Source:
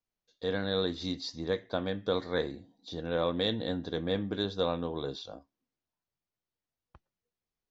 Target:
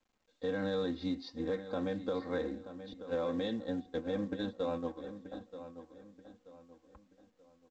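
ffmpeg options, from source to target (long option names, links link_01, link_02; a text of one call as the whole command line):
ffmpeg -i in.wav -filter_complex "[0:a]asettb=1/sr,asplit=3[link_01][link_02][link_03];[link_01]atrim=end=2.934[link_04];[link_02]atrim=start=2.93:end=5.32,asetpts=PTS-STARTPTS,afade=type=in:duration=0.004:curve=qsin,afade=type=out:start_time=2.386:duration=0.004:curve=qsin,agate=range=-27dB:threshold=-32dB:ratio=16:detection=peak[link_05];[link_03]atrim=start=5.316[link_06];[link_04][link_05]acrossfade=duration=0.004:curve1=hsin:curve2=qsin[link_07];[link_07][link_06]acrossfade=duration=0.004:curve1=qsin:curve2=hsin,highpass=frequency=45:poles=1,aemphasis=mode=reproduction:type=50fm,bandreject=frequency=3100:width=20,aecho=1:1:3.8:0.88,bandreject=frequency=370.5:width_type=h:width=4,bandreject=frequency=741:width_type=h:width=4,bandreject=frequency=1111.5:width_type=h:width=4,bandreject=frequency=1482:width_type=h:width=4,alimiter=limit=-22.5dB:level=0:latency=1:release=99,acrusher=bits=7:mode=log:mix=0:aa=0.000001,adynamicsmooth=sensitivity=2.5:basefreq=3400,asplit=2[link_08][link_09];[link_09]adelay=931,lowpass=frequency=3700:poles=1,volume=-12dB,asplit=2[link_10][link_11];[link_11]adelay=931,lowpass=frequency=3700:poles=1,volume=0.36,asplit=2[link_12][link_13];[link_13]adelay=931,lowpass=frequency=3700:poles=1,volume=0.36,asplit=2[link_14][link_15];[link_15]adelay=931,lowpass=frequency=3700:poles=1,volume=0.36[link_16];[link_08][link_10][link_12][link_14][link_16]amix=inputs=5:normalize=0,volume=-2.5dB" -ar 16000 -c:a pcm_mulaw out.wav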